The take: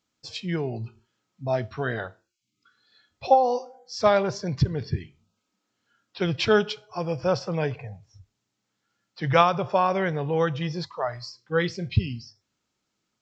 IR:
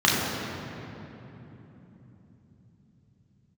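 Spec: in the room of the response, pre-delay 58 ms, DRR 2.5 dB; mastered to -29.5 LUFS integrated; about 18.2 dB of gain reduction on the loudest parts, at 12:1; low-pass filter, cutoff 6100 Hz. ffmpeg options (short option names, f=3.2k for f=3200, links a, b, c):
-filter_complex "[0:a]lowpass=6.1k,acompressor=threshold=-31dB:ratio=12,asplit=2[a][b];[1:a]atrim=start_sample=2205,adelay=58[c];[b][c]afir=irnorm=-1:irlink=0,volume=-22dB[d];[a][d]amix=inputs=2:normalize=0,volume=5dB"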